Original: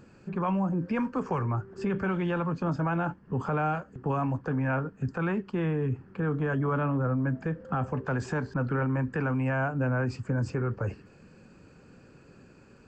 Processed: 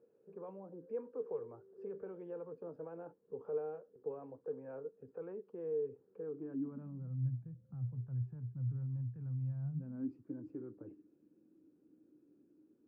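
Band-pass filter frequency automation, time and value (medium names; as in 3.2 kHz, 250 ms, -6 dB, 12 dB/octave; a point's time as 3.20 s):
band-pass filter, Q 12
6.20 s 460 Hz
7.30 s 120 Hz
9.61 s 120 Hz
10.13 s 310 Hz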